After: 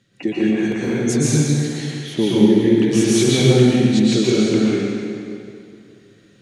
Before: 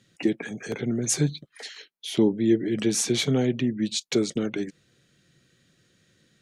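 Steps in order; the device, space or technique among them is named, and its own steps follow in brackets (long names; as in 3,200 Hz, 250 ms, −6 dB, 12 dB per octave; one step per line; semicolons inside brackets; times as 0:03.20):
swimming-pool hall (convolution reverb RT60 2.5 s, pre-delay 111 ms, DRR −8.5 dB; high-shelf EQ 4,700 Hz −7 dB)
level +1 dB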